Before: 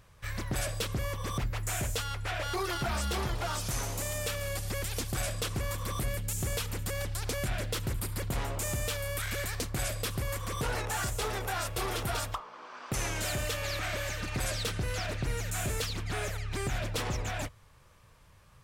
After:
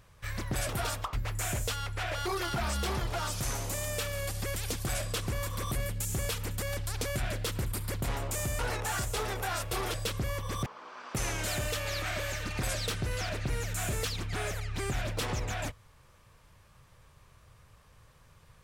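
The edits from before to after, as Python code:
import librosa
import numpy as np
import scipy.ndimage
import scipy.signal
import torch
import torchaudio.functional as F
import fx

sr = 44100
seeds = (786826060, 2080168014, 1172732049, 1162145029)

y = fx.edit(x, sr, fx.swap(start_s=0.69, length_s=0.72, other_s=11.99, other_length_s=0.44),
    fx.cut(start_s=8.87, length_s=1.77), tone=tone)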